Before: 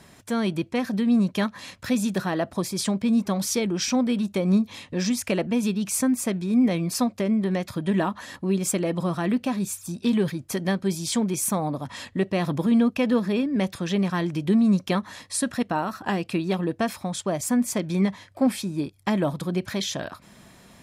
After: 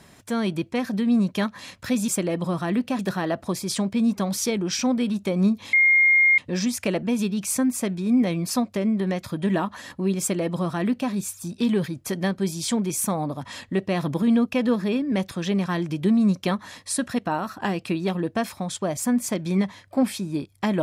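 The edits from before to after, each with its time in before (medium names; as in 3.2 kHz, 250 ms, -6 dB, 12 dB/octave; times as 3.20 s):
4.82 s: add tone 2.13 kHz -13.5 dBFS 0.65 s
8.64–9.55 s: copy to 2.08 s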